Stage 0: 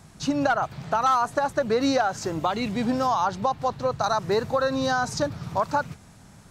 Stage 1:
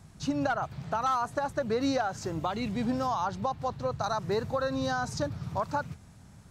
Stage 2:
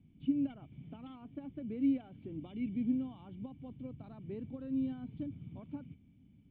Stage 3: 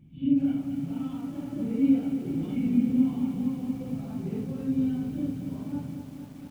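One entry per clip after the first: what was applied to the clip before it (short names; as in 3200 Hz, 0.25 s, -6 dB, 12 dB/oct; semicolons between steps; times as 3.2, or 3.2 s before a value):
bell 71 Hz +7.5 dB 2.6 oct; gain -7 dB
vocal tract filter i
phase scrambler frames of 0.2 s; bell 170 Hz +6.5 dB 0.64 oct; lo-fi delay 0.231 s, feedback 80%, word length 10-bit, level -8 dB; gain +7 dB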